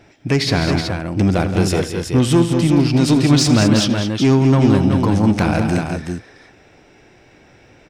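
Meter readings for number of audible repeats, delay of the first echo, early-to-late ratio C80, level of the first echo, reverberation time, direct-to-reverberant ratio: 4, 83 ms, none, -16.0 dB, none, none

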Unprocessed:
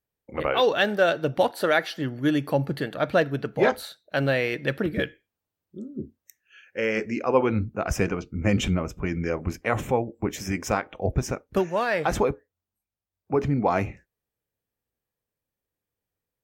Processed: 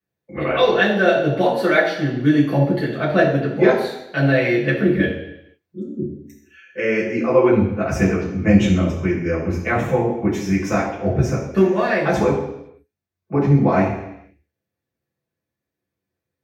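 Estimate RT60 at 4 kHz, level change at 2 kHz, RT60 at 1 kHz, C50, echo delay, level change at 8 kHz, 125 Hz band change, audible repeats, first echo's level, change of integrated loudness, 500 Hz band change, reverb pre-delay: 0.85 s, +6.0 dB, 0.80 s, 5.0 dB, none, 0.0 dB, +9.0 dB, none, none, +7.0 dB, +6.5 dB, 3 ms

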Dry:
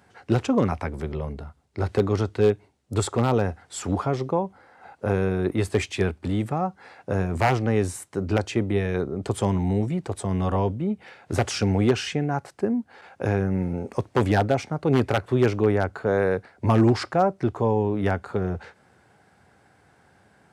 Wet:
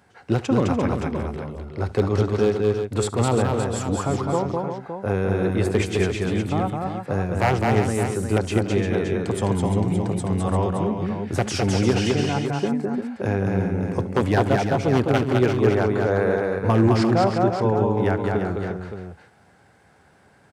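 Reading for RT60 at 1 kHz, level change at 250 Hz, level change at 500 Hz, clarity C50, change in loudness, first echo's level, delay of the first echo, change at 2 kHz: none, +2.5 dB, +2.5 dB, none, +2.5 dB, -19.5 dB, 72 ms, +2.5 dB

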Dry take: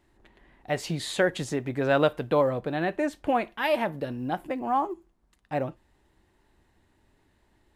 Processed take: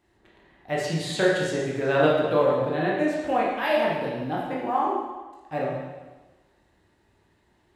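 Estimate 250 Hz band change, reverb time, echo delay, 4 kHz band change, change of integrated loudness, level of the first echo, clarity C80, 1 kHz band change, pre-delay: +2.5 dB, 1.2 s, none, +2.5 dB, +3.0 dB, none, 3.0 dB, +2.5 dB, 14 ms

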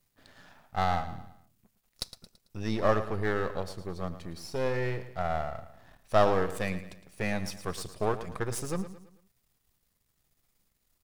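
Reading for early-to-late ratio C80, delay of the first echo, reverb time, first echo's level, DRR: none, 0.111 s, none, -13.0 dB, none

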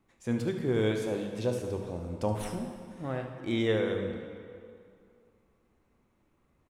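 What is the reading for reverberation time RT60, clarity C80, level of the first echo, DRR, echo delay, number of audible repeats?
2.5 s, 6.5 dB, -12.0 dB, 3.5 dB, 74 ms, 1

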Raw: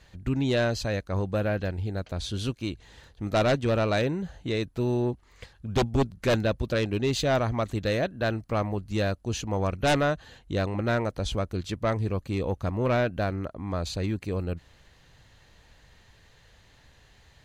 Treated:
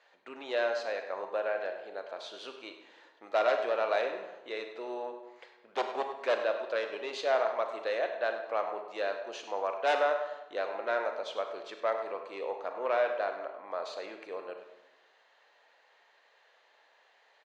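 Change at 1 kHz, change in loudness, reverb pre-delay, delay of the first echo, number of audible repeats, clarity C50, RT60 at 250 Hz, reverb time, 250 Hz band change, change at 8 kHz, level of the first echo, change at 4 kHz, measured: -1.0 dB, -5.5 dB, 28 ms, 0.101 s, 2, 6.5 dB, 1.0 s, 0.95 s, -20.0 dB, under -10 dB, -12.5 dB, -8.0 dB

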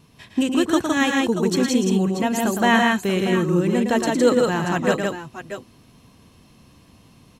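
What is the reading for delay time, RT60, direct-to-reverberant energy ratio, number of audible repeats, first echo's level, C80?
0.111 s, none, none, 3, -6.5 dB, none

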